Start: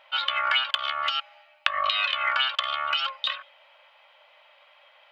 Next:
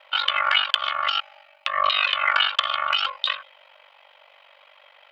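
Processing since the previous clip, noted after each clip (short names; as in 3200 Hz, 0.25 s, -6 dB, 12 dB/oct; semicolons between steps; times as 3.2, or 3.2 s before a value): ring modulator 24 Hz; gain +6.5 dB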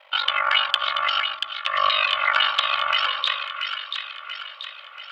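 split-band echo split 1300 Hz, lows 0.138 s, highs 0.684 s, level -6 dB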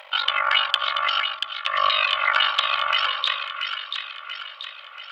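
upward compressor, threshold -37 dBFS; bell 210 Hz -6.5 dB 0.86 oct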